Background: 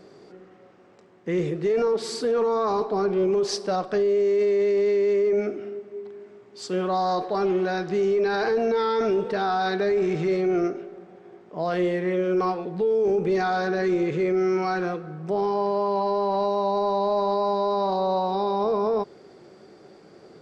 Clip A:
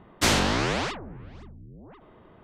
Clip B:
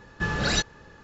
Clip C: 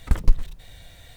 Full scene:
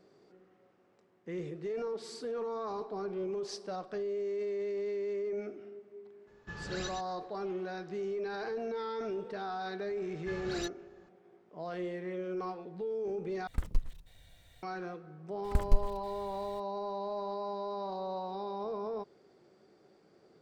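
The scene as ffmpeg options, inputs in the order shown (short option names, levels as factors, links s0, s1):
-filter_complex "[2:a]asplit=2[s0][s1];[3:a]asplit=2[s2][s3];[0:a]volume=0.2[s4];[s0]aecho=1:1:119:0.531[s5];[s1]asoftclip=type=tanh:threshold=0.178[s6];[s4]asplit=2[s7][s8];[s7]atrim=end=13.474[s9];[s2]atrim=end=1.16,asetpts=PTS-STARTPTS,volume=0.211[s10];[s8]atrim=start=14.626[s11];[s5]atrim=end=1.03,asetpts=PTS-STARTPTS,volume=0.141,afade=t=in:d=0.004:c=hsin,afade=t=out:st=1.026:d=0.004:c=hsin,adelay=6270[s12];[s6]atrim=end=1.03,asetpts=PTS-STARTPTS,volume=0.168,afade=t=in:d=0.004:c=hsin,afade=t=out:st=1.026:d=0.004:c=hsin,adelay=10060[s13];[s3]atrim=end=1.16,asetpts=PTS-STARTPTS,volume=0.355,afade=t=in:d=0.004:c=hsin,afade=t=out:st=1.156:d=0.004:c=hsin,adelay=15440[s14];[s9][s10]acrossfade=d=0.004:c1=hsin:c2=hsin[s15];[s15][s11]acrossfade=d=0.004:c1=hsin:c2=hsin[s16];[s16][s12][s13][s14]amix=inputs=4:normalize=0"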